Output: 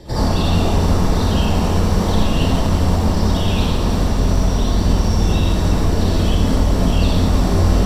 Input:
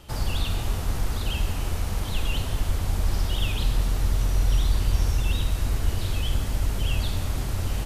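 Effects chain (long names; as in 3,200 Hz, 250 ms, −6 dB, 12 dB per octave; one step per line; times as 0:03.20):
brickwall limiter −18.5 dBFS, peak gain reduction 7.5 dB
convolution reverb RT60 0.75 s, pre-delay 52 ms, DRR −6.5 dB
feedback echo at a low word length 346 ms, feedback 80%, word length 7 bits, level −14 dB
level −2 dB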